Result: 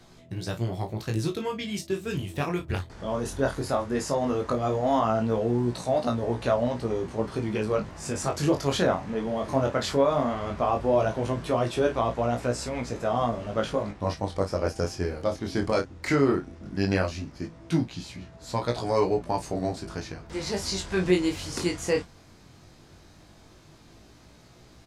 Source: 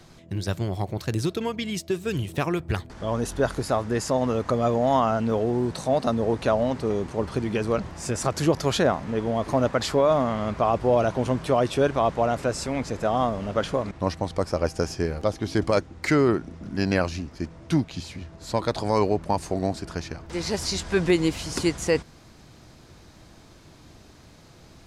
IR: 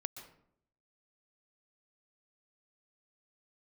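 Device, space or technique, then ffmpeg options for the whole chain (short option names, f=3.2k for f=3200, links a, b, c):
double-tracked vocal: -filter_complex "[0:a]asplit=2[a][b];[b]adelay=33,volume=-10dB[c];[a][c]amix=inputs=2:normalize=0,flanger=delay=16.5:depth=6:speed=0.16"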